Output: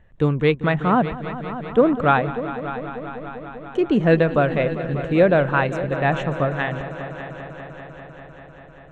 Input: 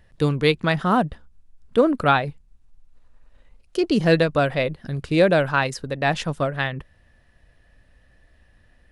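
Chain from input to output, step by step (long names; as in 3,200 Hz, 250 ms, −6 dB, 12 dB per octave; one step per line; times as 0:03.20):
moving average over 9 samples
echo machine with several playback heads 197 ms, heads all three, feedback 69%, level −17 dB
level +1.5 dB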